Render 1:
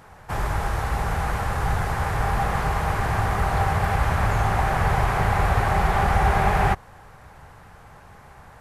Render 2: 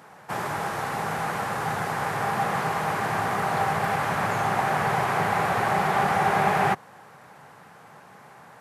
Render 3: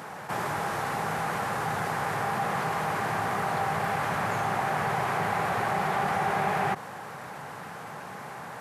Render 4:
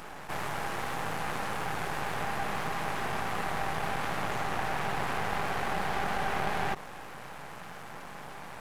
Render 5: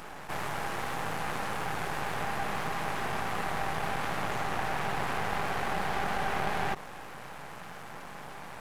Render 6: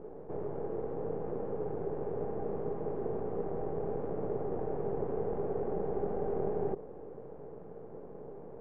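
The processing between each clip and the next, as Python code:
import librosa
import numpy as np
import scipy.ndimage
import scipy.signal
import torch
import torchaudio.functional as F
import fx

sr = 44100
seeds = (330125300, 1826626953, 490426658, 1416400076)

y1 = scipy.signal.sosfilt(scipy.signal.butter(4, 150.0, 'highpass', fs=sr, output='sos'), x)
y2 = fx.env_flatten(y1, sr, amount_pct=50)
y2 = y2 * librosa.db_to_amplitude(-6.0)
y3 = np.maximum(y2, 0.0)
y4 = y3
y5 = fx.lowpass_res(y4, sr, hz=440.0, q=4.9)
y5 = y5 * librosa.db_to_amplitude(-3.5)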